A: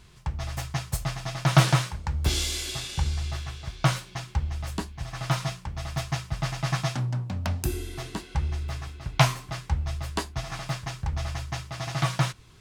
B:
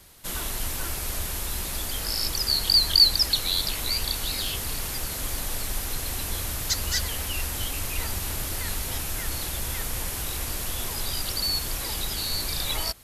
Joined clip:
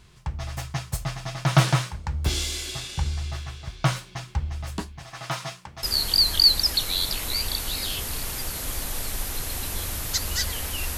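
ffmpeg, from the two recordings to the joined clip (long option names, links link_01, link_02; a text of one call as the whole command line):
ffmpeg -i cue0.wav -i cue1.wav -filter_complex "[0:a]asettb=1/sr,asplit=3[link_01][link_02][link_03];[link_01]atrim=end=4.994[link_04];[link_02]atrim=start=4.99:end=5.83,asetpts=PTS-STARTPTS,afade=type=in:duration=0.004:curve=qsin,afade=type=out:start_time=0.836:duration=0.004:curve=qsin,highpass=frequency=340:poles=1[link_05];[link_03]atrim=start=5.826[link_06];[link_04][link_05]acrossfade=duration=0.004:curve1=hsin:curve2=qsin[link_07];[link_07][link_06]acrossfade=duration=0.004:curve1=qsin:curve2=hsin,apad=whole_dur=10.97,atrim=end=10.97,atrim=end=5.832[link_08];[1:a]atrim=start=2.388:end=7.53[link_09];[link_08][link_09]acrossfade=duration=0.004:curve1=hsin:curve2=hsin" out.wav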